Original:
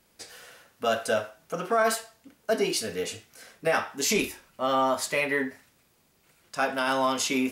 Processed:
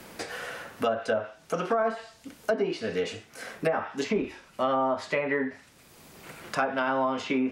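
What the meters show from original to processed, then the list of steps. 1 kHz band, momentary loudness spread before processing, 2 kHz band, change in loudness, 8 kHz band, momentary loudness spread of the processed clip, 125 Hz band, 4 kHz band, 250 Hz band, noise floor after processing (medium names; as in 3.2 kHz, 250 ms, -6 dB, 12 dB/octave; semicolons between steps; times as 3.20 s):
-1.5 dB, 12 LU, -3.0 dB, -2.0 dB, -14.5 dB, 12 LU, +1.5 dB, -7.5 dB, +0.5 dB, -56 dBFS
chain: low-pass that closes with the level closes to 1.1 kHz, closed at -20.5 dBFS; three bands compressed up and down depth 70%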